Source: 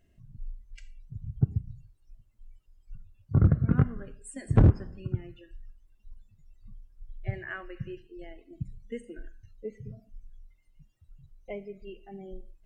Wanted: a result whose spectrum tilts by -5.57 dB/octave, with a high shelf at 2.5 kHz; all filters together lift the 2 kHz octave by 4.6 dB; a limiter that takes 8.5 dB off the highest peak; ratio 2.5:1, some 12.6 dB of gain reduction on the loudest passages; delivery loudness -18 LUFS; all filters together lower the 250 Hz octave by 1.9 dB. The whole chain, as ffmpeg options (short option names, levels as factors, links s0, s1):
-af "equalizer=f=250:t=o:g=-3,equalizer=f=2000:t=o:g=8.5,highshelf=f=2500:g=-6,acompressor=threshold=0.0178:ratio=2.5,volume=21.1,alimiter=limit=0.708:level=0:latency=1"